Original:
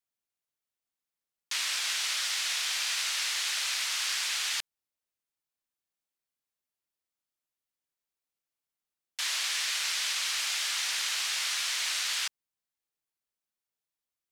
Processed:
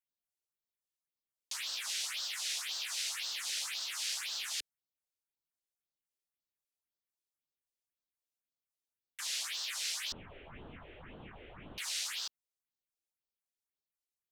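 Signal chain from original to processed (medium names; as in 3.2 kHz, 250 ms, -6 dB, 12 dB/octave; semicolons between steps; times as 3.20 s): 10.12–11.78 s: one-bit delta coder 16 kbps, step -45.5 dBFS; phase shifter stages 4, 1.9 Hz, lowest notch 160–2200 Hz; trim -5 dB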